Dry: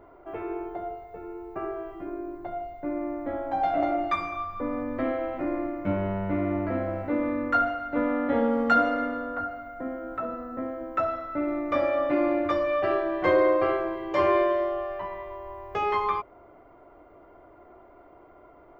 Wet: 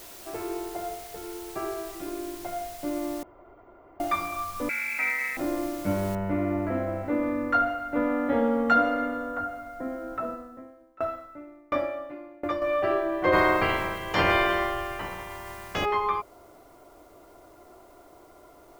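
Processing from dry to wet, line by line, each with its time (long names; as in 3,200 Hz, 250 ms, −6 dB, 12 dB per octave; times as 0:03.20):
0:00.76–0:02.67: high shelf with overshoot 3,300 Hz −7.5 dB, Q 3
0:03.23–0:04.00: fill with room tone
0:04.69–0:05.37: voice inversion scrambler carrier 2,600 Hz
0:06.15: noise floor change −46 dB −65 dB
0:08.56–0:09.58: notch filter 4,700 Hz, Q 11
0:10.29–0:12.62: tremolo with a ramp in dB decaying 1.4 Hz, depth 27 dB
0:13.32–0:15.84: ceiling on every frequency bin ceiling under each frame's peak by 24 dB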